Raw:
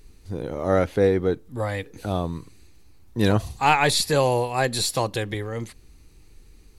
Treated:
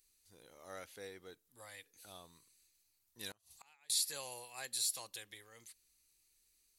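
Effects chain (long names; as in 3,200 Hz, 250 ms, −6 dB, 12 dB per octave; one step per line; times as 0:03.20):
first-order pre-emphasis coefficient 0.97
0:03.31–0:03.90: gate with flip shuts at −32 dBFS, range −27 dB
level −8.5 dB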